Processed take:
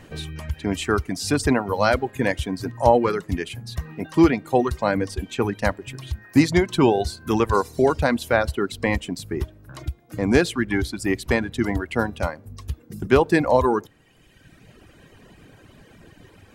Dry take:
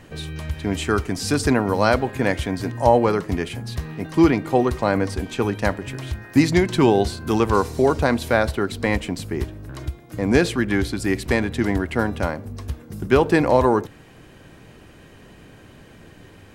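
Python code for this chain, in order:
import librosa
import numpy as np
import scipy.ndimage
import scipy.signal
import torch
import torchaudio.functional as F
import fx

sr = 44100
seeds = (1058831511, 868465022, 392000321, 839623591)

y = fx.dereverb_blind(x, sr, rt60_s=1.4)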